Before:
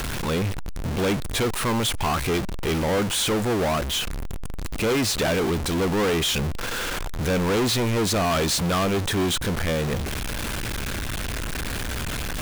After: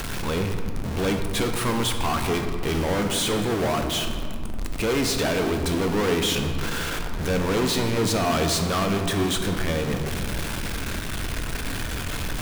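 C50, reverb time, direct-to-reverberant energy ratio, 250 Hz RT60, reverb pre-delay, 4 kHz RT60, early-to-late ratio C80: 6.0 dB, 2.4 s, 4.5 dB, 3.8 s, 3 ms, 1.2 s, 7.0 dB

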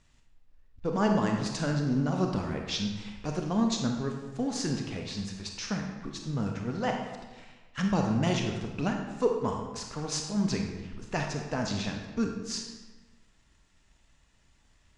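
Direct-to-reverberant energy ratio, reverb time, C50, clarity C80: 2.0 dB, 1.2 s, 3.5 dB, 6.0 dB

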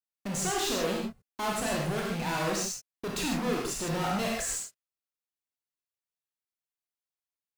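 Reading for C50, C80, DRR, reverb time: 0.5 dB, 3.5 dB, -2.5 dB, not exponential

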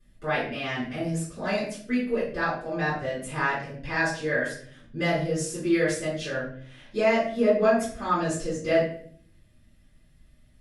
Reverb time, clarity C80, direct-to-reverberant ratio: 0.55 s, 8.5 dB, -11.0 dB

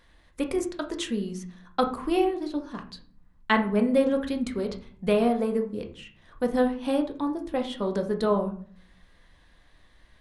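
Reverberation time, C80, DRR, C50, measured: 0.45 s, 15.5 dB, 4.0 dB, 11.5 dB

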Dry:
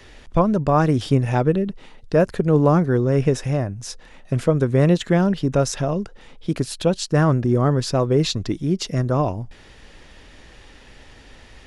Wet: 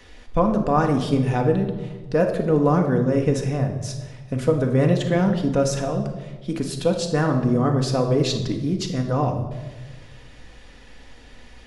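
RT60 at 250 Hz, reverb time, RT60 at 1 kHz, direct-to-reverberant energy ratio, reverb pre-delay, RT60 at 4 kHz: 1.6 s, 1.3 s, 1.1 s, 2.5 dB, 4 ms, 0.90 s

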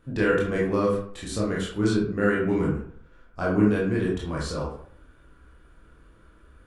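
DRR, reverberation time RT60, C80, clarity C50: -5.0 dB, 0.60 s, 7.5 dB, 3.0 dB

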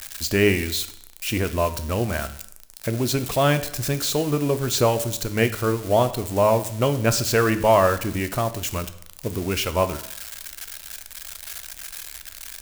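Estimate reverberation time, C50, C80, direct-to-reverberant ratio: 0.70 s, 14.0 dB, 16.5 dB, 10.5 dB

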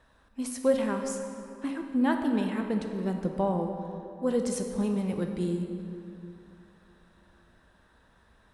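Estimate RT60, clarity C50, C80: 2.9 s, 5.0 dB, 6.0 dB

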